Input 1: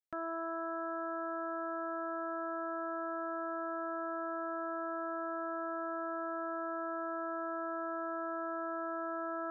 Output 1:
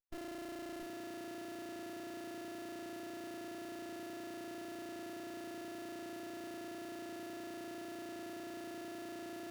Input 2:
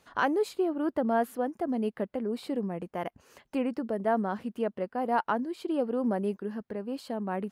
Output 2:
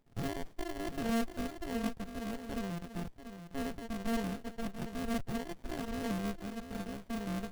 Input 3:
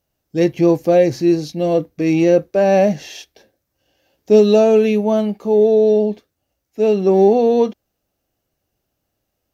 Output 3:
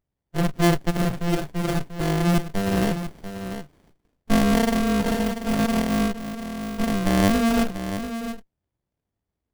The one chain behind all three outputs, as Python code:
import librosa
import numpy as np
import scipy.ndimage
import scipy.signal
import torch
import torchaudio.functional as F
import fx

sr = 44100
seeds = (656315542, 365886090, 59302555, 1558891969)

y = fx.bit_reversed(x, sr, seeds[0], block=64)
y = fx.hpss(y, sr, part='percussive', gain_db=-7)
y = y + 10.0 ** (-10.0 / 20.0) * np.pad(y, (int(689 * sr / 1000.0), 0))[:len(y)]
y = fx.running_max(y, sr, window=33)
y = F.gain(torch.from_numpy(y), -4.0).numpy()